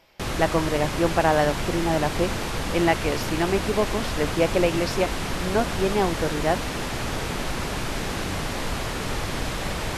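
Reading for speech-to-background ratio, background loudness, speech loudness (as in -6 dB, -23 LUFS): 3.5 dB, -28.5 LUFS, -25.0 LUFS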